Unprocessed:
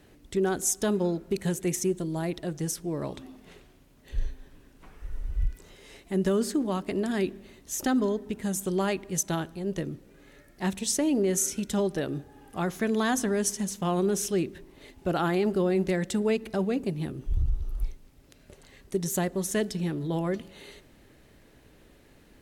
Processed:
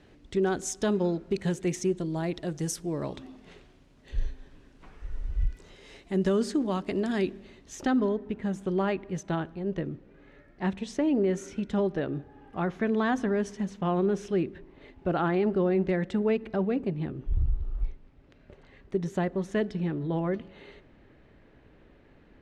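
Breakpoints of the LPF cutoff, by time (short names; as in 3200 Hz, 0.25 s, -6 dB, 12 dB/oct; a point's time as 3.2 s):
2.22 s 5100 Hz
2.75 s 10000 Hz
3.12 s 6000 Hz
7.34 s 6000 Hz
8.2 s 2400 Hz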